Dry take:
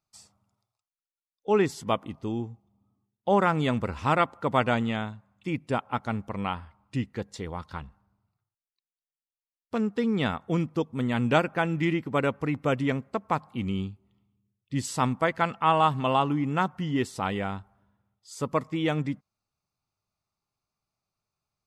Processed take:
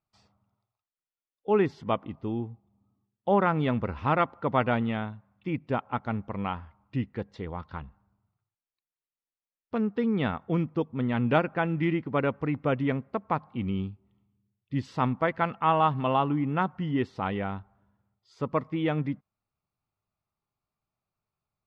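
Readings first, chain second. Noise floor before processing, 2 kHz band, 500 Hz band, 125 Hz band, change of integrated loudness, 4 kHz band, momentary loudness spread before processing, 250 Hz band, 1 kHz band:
under -85 dBFS, -2.5 dB, -1.0 dB, 0.0 dB, -1.0 dB, -6.0 dB, 12 LU, -0.5 dB, -1.5 dB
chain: distance through air 280 m

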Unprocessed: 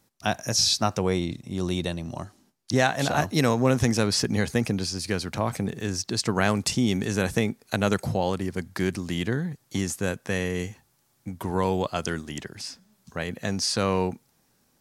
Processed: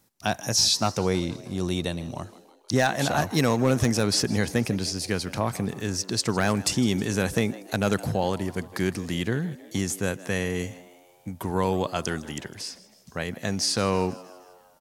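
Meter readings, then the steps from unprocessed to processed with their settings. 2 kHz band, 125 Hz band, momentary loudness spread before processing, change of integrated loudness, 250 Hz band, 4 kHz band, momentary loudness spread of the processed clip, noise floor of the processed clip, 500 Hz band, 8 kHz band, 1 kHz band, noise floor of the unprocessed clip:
-0.5 dB, 0.0 dB, 13 LU, 0.0 dB, 0.0 dB, +0.5 dB, 12 LU, -57 dBFS, 0.0 dB, +1.5 dB, -0.5 dB, -68 dBFS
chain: treble shelf 9.7 kHz +5 dB; overload inside the chain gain 11.5 dB; on a send: frequency-shifting echo 158 ms, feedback 55%, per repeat +87 Hz, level -19 dB

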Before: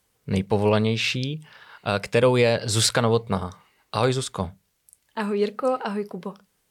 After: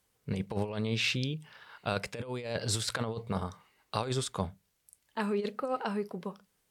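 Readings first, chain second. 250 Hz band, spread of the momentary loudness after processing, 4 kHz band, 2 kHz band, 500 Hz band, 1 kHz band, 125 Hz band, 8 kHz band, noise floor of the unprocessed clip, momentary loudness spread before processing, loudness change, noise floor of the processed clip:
-9.5 dB, 10 LU, -8.5 dB, -8.5 dB, -13.0 dB, -9.5 dB, -9.5 dB, -10.0 dB, -70 dBFS, 14 LU, -11.0 dB, -76 dBFS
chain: compressor with a negative ratio -23 dBFS, ratio -0.5; trim -8 dB

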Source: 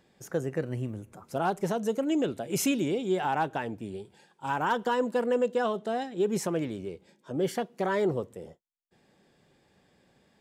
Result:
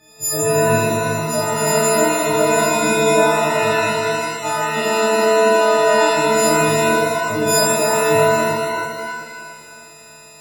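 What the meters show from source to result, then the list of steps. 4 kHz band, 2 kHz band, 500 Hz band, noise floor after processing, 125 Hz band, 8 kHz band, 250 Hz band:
+18.0 dB, +18.5 dB, +14.5 dB, -42 dBFS, +11.5 dB, +21.0 dB, +8.0 dB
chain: partials quantised in pitch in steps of 6 st; compressor with a negative ratio -29 dBFS, ratio -1; pitch-shifted reverb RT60 1.9 s, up +7 st, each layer -2 dB, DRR -10.5 dB

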